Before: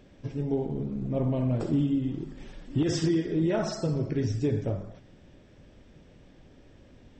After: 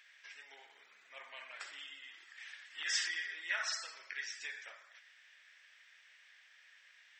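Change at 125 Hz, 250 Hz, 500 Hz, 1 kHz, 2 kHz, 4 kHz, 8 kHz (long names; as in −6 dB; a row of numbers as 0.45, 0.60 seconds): below −40 dB, below −40 dB, −30.5 dB, −9.5 dB, +7.0 dB, +2.0 dB, +1.0 dB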